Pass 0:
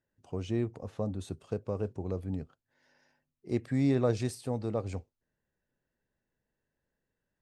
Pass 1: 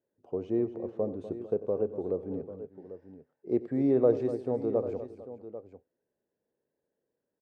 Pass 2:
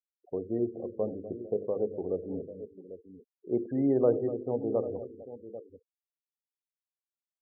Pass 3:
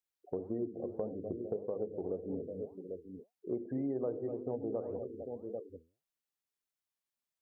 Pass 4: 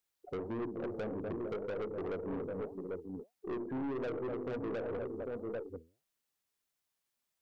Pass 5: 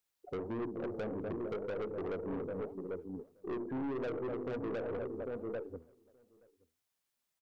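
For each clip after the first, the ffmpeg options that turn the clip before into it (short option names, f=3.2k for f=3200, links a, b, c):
-af "bandpass=f=440:t=q:w=1.7:csg=0,aecho=1:1:92|246|451|794:0.141|0.224|0.112|0.211,volume=7dB"
-af "bandreject=f=50:t=h:w=6,bandreject=f=100:t=h:w=6,bandreject=f=150:t=h:w=6,bandreject=f=200:t=h:w=6,bandreject=f=250:t=h:w=6,bandreject=f=300:t=h:w=6,bandreject=f=350:t=h:w=6,bandreject=f=400:t=h:w=6,bandreject=f=450:t=h:w=6,bandreject=f=500:t=h:w=6,afftfilt=real='re*gte(hypot(re,im),0.00794)':imag='im*gte(hypot(re,im),0.00794)':win_size=1024:overlap=0.75"
-af "flanger=delay=3.9:depth=8.6:regen=82:speed=1.8:shape=sinusoidal,acompressor=threshold=-42dB:ratio=4,volume=7dB"
-af "aeval=exprs='(tanh(112*val(0)+0.2)-tanh(0.2))/112':c=same,volume=6.5dB"
-filter_complex "[0:a]asplit=2[a][b];[b]adelay=874.6,volume=-26dB,highshelf=f=4k:g=-19.7[c];[a][c]amix=inputs=2:normalize=0"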